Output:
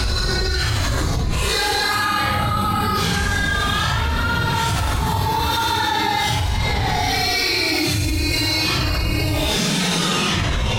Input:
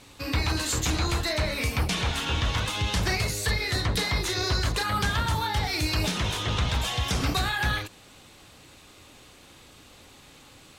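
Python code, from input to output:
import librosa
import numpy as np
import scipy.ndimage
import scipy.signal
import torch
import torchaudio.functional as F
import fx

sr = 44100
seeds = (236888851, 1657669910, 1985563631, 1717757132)

p1 = x * (1.0 - 0.92 / 2.0 + 0.92 / 2.0 * np.cos(2.0 * np.pi * 0.92 * (np.arange(len(x)) / sr)))
p2 = fx.fold_sine(p1, sr, drive_db=12, ceiling_db=-13.5)
p3 = p1 + (p2 * 10.0 ** (-10.5 / 20.0))
p4 = fx.paulstretch(p3, sr, seeds[0], factor=6.2, window_s=0.05, from_s=4.53)
p5 = fx.env_flatten(p4, sr, amount_pct=100)
y = p5 * 10.0 ** (-3.5 / 20.0)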